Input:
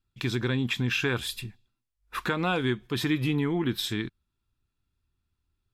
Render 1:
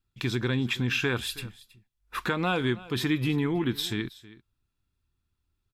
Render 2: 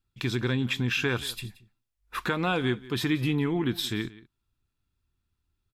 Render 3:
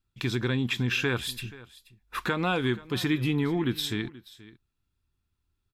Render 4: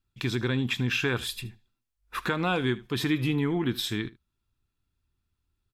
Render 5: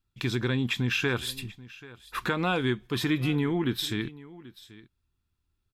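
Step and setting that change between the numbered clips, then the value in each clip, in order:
single-tap delay, delay time: 321, 177, 480, 77, 785 milliseconds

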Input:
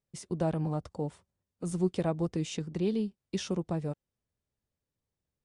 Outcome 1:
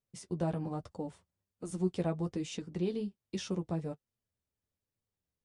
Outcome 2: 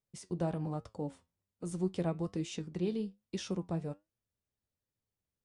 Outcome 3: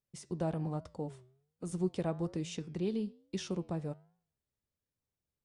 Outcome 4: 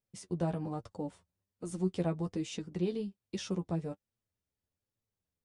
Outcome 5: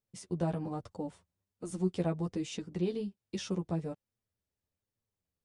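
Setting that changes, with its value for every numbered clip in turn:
flanger, regen: −28, +72, −89, +23, +2%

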